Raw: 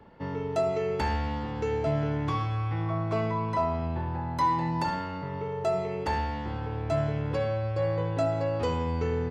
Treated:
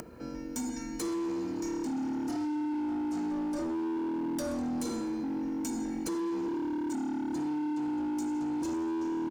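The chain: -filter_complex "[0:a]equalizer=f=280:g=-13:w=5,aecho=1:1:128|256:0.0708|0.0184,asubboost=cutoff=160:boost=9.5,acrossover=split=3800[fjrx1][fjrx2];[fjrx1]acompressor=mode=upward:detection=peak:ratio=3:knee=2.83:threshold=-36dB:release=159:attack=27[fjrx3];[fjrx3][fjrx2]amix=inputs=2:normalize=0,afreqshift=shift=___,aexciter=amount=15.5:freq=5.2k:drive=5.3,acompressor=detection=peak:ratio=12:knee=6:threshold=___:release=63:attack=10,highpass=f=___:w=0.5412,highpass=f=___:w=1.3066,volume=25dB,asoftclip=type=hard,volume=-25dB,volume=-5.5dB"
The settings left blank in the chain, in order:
-410, -21dB, 43, 43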